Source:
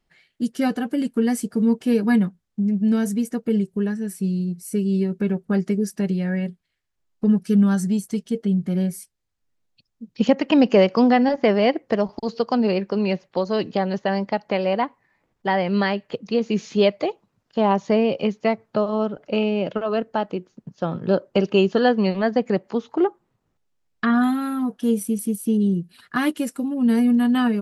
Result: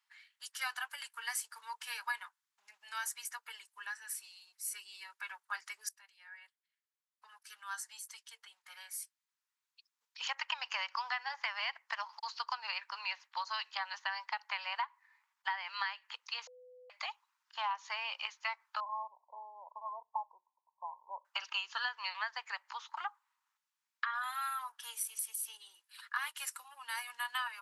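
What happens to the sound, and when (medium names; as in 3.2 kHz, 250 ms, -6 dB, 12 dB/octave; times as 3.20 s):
5.89–10.07 s: fade in, from -19 dB
16.47–16.90 s: bleep 501 Hz -12 dBFS
18.80–21.25 s: brick-wall FIR low-pass 1.1 kHz
whole clip: Chebyshev high-pass 920 Hz, order 5; compression 12:1, threshold -31 dBFS; trim -1.5 dB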